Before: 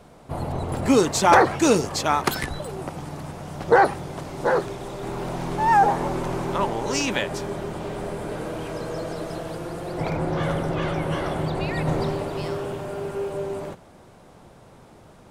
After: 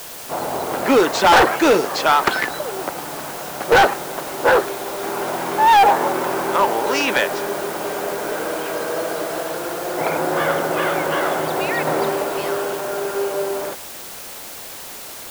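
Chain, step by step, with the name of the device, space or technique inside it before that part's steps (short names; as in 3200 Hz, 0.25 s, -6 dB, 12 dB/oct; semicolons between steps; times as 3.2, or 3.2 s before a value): drive-through speaker (BPF 390–3600 Hz; bell 1500 Hz +4.5 dB 0.34 oct; hard clip -17 dBFS, distortion -8 dB; white noise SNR 15 dB); gain +8.5 dB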